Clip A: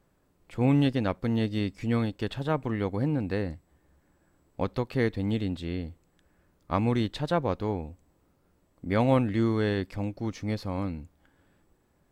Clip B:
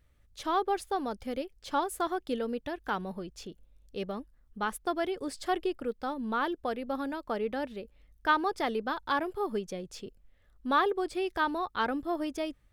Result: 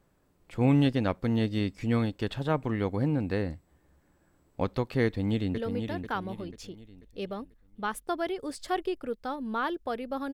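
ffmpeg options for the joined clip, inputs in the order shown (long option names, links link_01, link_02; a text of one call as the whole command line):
ffmpeg -i cue0.wav -i cue1.wav -filter_complex "[0:a]apad=whole_dur=10.33,atrim=end=10.33,atrim=end=5.572[link_01];[1:a]atrim=start=2.348:end=7.11[link_02];[link_01][link_02]acrossfade=duration=0.004:curve1=hsin:curve2=hsin,asplit=2[link_03][link_04];[link_04]afade=type=in:start_time=5.05:duration=0.01,afade=type=out:start_time=5.57:duration=0.01,aecho=0:1:490|980|1470|1960|2450:0.473151|0.189261|0.0757042|0.0302817|0.0121127[link_05];[link_03][link_05]amix=inputs=2:normalize=0" out.wav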